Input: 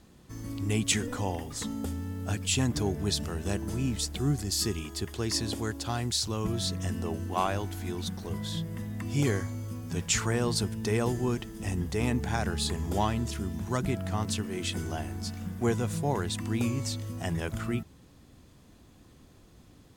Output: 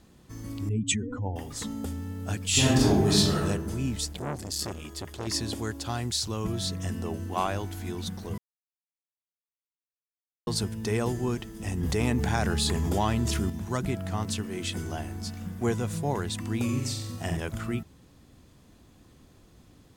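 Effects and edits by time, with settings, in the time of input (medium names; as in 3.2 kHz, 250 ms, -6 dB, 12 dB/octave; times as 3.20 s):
0.69–1.36 s: spectral contrast enhancement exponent 2.1
2.50–3.42 s: reverb throw, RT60 0.85 s, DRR -8.5 dB
4.13–5.27 s: transformer saturation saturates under 940 Hz
8.38–10.47 s: mute
11.83–13.50 s: level flattener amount 70%
16.64–17.37 s: flutter echo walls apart 7.9 m, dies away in 0.67 s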